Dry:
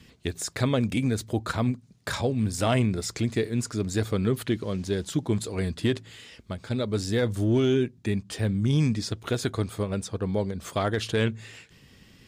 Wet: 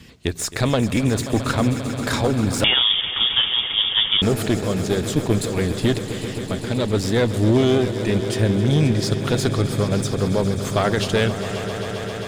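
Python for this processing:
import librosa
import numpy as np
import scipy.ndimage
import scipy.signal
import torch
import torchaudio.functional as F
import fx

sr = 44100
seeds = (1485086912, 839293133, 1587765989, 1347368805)

y = fx.diode_clip(x, sr, knee_db=-27.5)
y = fx.echo_swell(y, sr, ms=133, loudest=5, wet_db=-14)
y = fx.freq_invert(y, sr, carrier_hz=3500, at=(2.64, 4.22))
y = y * librosa.db_to_amplitude(8.0)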